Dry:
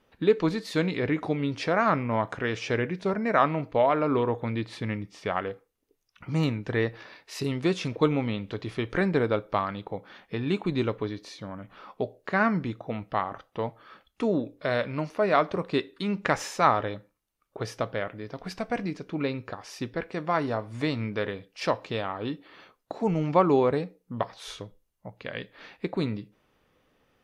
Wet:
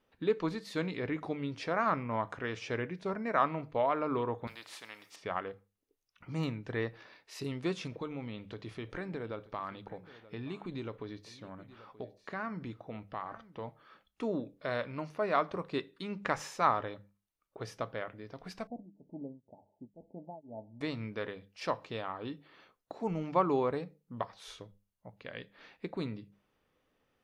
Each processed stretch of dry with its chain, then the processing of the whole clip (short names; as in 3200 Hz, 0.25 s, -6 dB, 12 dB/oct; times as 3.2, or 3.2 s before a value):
4.47–5.16 HPF 830 Hz + spectral compressor 2:1
7.87–13.68 compressor 3:1, threshold -28 dBFS + echo 0.93 s -17.5 dB
18.67–20.81 rippled Chebyshev low-pass 900 Hz, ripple 9 dB + beating tremolo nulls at 2 Hz
whole clip: notches 50/100/150/200 Hz; dynamic EQ 1100 Hz, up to +4 dB, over -39 dBFS, Q 2.1; gain -8.5 dB